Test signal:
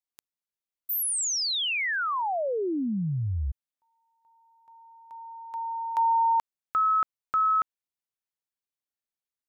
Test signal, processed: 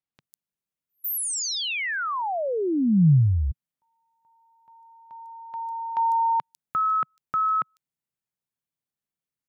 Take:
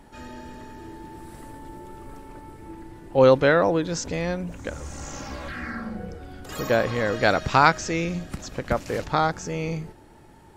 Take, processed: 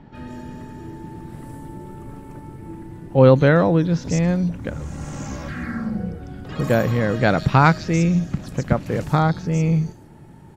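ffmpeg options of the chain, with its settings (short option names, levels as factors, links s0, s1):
-filter_complex "[0:a]equalizer=f=150:w=0.91:g=13,acrossover=split=4700[s0][s1];[s1]adelay=150[s2];[s0][s2]amix=inputs=2:normalize=0"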